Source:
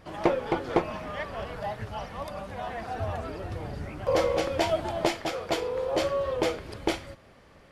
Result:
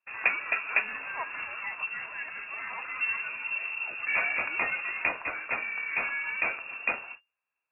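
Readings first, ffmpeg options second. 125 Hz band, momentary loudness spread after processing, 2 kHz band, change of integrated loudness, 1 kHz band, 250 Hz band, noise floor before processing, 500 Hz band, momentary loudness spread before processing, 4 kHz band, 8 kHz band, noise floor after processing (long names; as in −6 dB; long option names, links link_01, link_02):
below −20 dB, 9 LU, +11.0 dB, 0.0 dB, −5.5 dB, −19.5 dB, −55 dBFS, −17.5 dB, 10 LU, can't be measured, below −35 dB, below −85 dBFS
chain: -af "equalizer=frequency=100:width_type=o:width=0.67:gain=4,equalizer=frequency=630:width_type=o:width=0.67:gain=-10,equalizer=frequency=1600:width_type=o:width=0.67:gain=5,agate=range=-33dB:threshold=-45dB:ratio=16:detection=peak,lowpass=frequency=2400:width_type=q:width=0.5098,lowpass=frequency=2400:width_type=q:width=0.6013,lowpass=frequency=2400:width_type=q:width=0.9,lowpass=frequency=2400:width_type=q:width=2.563,afreqshift=-2800"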